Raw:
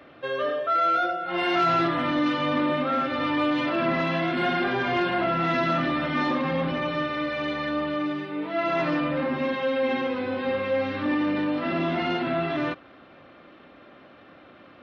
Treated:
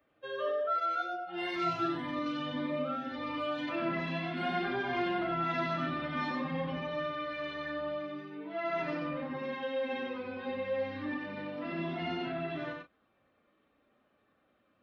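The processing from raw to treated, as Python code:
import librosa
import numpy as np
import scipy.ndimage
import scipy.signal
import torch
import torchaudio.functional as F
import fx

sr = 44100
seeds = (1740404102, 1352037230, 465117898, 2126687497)

y = fx.bin_expand(x, sr, power=1.5)
y = fx.doubler(y, sr, ms=35.0, db=-9.0)
y = y + 10.0 ** (-4.0 / 20.0) * np.pad(y, (int(92 * sr / 1000.0), 0))[:len(y)]
y = fx.notch_cascade(y, sr, direction='rising', hz=1.8, at=(1.01, 3.67), fade=0.02)
y = y * 10.0 ** (-7.5 / 20.0)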